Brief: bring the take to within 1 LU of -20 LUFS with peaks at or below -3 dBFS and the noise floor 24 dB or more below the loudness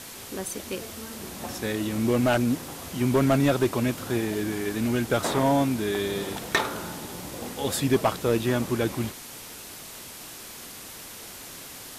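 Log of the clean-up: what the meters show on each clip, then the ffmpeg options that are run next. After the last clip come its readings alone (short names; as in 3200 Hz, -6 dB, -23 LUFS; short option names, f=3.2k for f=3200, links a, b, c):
noise floor -42 dBFS; noise floor target -51 dBFS; loudness -26.5 LUFS; peak -12.0 dBFS; loudness target -20.0 LUFS
-> -af "afftdn=nr=9:nf=-42"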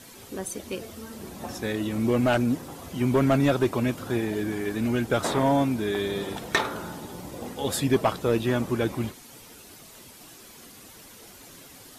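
noise floor -48 dBFS; noise floor target -51 dBFS
-> -af "afftdn=nr=6:nf=-48"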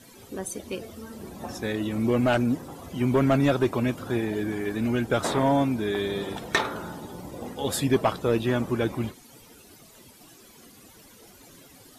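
noise floor -52 dBFS; loudness -26.0 LUFS; peak -12.0 dBFS; loudness target -20.0 LUFS
-> -af "volume=6dB"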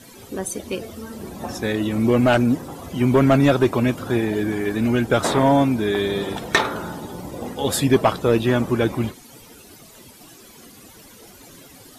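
loudness -20.0 LUFS; peak -6.0 dBFS; noise floor -46 dBFS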